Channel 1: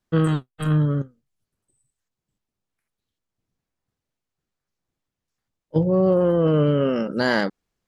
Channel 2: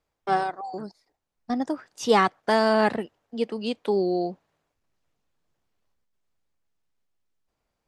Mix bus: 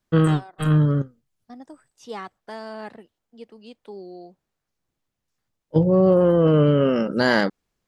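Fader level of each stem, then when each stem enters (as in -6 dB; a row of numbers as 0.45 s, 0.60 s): +2.0 dB, -15.0 dB; 0.00 s, 0.00 s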